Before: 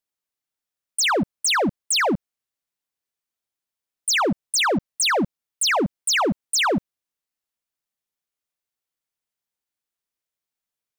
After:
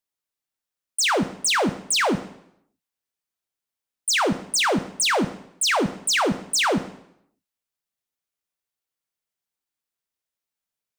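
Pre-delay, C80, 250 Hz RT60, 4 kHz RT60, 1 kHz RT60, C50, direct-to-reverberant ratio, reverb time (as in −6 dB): 4 ms, 16.0 dB, 0.75 s, 0.70 s, 0.70 s, 13.5 dB, 10.0 dB, 0.75 s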